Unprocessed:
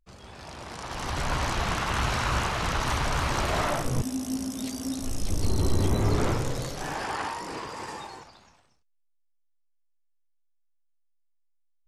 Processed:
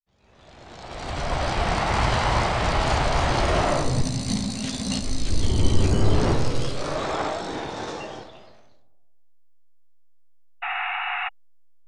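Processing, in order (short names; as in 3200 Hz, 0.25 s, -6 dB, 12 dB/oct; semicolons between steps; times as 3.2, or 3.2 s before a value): opening faded in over 1.83 s; digital reverb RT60 1.2 s, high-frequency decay 0.3×, pre-delay 0 ms, DRR 7.5 dB; painted sound noise, 10.62–11.29, 700–3900 Hz -32 dBFS; formant shift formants -5 st; gain +4.5 dB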